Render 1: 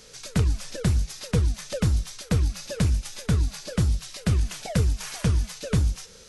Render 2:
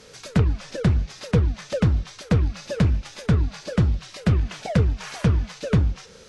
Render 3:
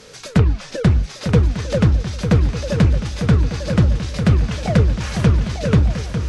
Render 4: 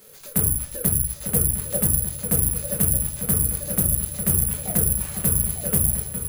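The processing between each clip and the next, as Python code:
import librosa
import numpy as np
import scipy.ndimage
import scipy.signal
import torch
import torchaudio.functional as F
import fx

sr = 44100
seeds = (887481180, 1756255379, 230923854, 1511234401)

y1 = fx.env_lowpass_down(x, sr, base_hz=2700.0, full_db=-17.0)
y1 = fx.highpass(y1, sr, hz=82.0, slope=6)
y1 = fx.high_shelf(y1, sr, hz=3800.0, db=-11.0)
y1 = F.gain(torch.from_numpy(y1), 5.5).numpy()
y2 = fx.echo_swing(y1, sr, ms=1198, ratio=3, feedback_pct=40, wet_db=-8.5)
y2 = F.gain(torch.from_numpy(y2), 5.0).numpy()
y3 = fx.room_shoebox(y2, sr, seeds[0], volume_m3=150.0, walls='furnished', distance_m=1.1)
y3 = (np.kron(scipy.signal.resample_poly(y3, 1, 4), np.eye(4)[0]) * 4)[:len(y3)]
y3 = fx.doppler_dist(y3, sr, depth_ms=0.28)
y3 = F.gain(torch.from_numpy(y3), -13.5).numpy()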